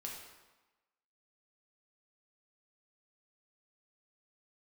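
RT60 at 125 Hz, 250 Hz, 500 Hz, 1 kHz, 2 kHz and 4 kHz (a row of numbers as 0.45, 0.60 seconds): 0.95, 1.1, 1.1, 1.2, 1.0, 0.90 seconds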